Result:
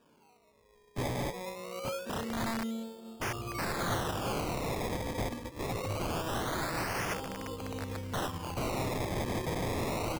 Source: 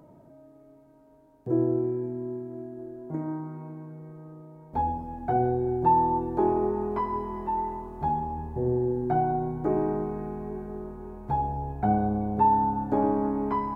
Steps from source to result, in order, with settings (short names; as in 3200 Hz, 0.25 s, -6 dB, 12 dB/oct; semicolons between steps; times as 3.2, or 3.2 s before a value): speed glide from 154% -> 116%; high shelf 2100 Hz -6 dB; level quantiser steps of 10 dB; on a send: feedback echo 0.89 s, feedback 57%, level -21.5 dB; on the sum: spring tank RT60 2 s, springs 31 ms, chirp 65 ms, DRR 1.5 dB; in parallel at -9 dB: wavefolder -26.5 dBFS; on the sum: decimation with a swept rate 21×, swing 100% 0.24 Hz; wrapped overs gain 27.5 dB; bell 110 Hz +6.5 dB 0.43 oct; upward expander 1.5:1, over -48 dBFS